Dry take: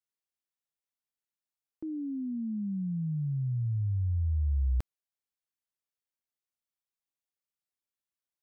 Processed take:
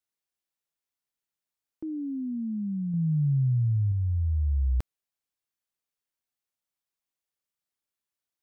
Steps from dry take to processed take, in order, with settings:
0:02.93–0:03.92: dynamic equaliser 140 Hz, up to +5 dB, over −44 dBFS, Q 1.7
level +2.5 dB

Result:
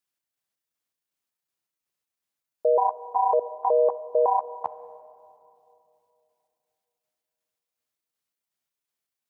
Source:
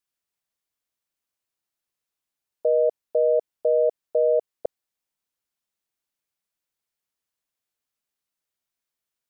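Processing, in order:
pitch shifter gated in a rhythm +8 semitones, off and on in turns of 185 ms
high-pass filter 78 Hz
on a send: convolution reverb RT60 2.9 s, pre-delay 4 ms, DRR 14.5 dB

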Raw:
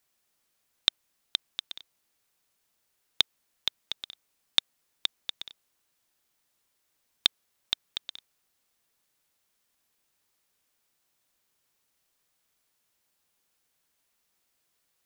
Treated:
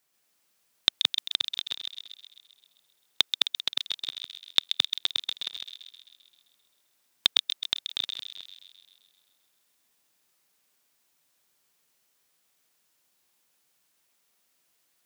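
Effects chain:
delay that plays each chunk backwards 138 ms, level −1.5 dB
high-pass filter 120 Hz 12 dB per octave
on a send: delay with a high-pass on its return 131 ms, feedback 62%, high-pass 2,400 Hz, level −6.5 dB
on the sum: level +1 dB

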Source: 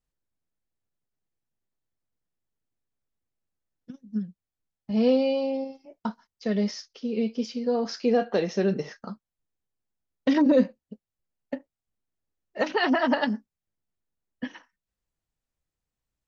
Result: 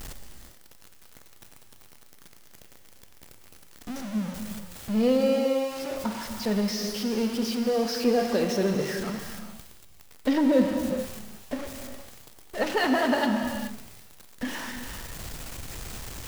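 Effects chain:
converter with a step at zero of −28.5 dBFS
reverb whose tail is shaped and stops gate 460 ms flat, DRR 4.5 dB
level −3 dB

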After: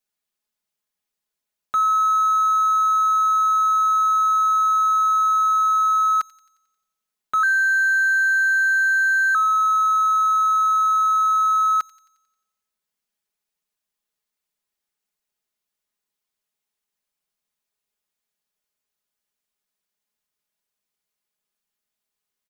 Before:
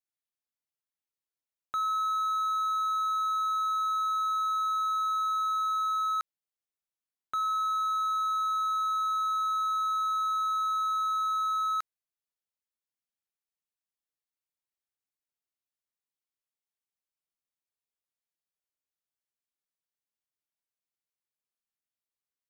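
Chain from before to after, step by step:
comb filter 4.8 ms, depth 64%
0:07.43–0:09.35: frequency shifter +270 Hz
delay with a high-pass on its return 89 ms, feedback 56%, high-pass 3,000 Hz, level −16.5 dB
level +8 dB

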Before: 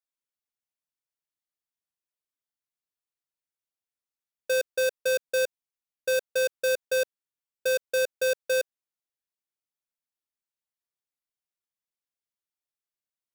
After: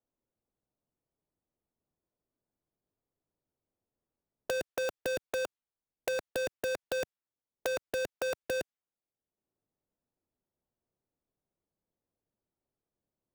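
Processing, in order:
low-pass that shuts in the quiet parts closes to 500 Hz, open at −25.5 dBFS
wrap-around overflow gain 25 dB
multiband upward and downward compressor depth 70%
level −3.5 dB

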